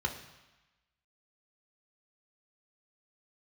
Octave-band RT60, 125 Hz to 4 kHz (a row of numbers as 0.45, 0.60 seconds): 1.0, 1.0, 0.95, 1.2, 1.2, 1.1 seconds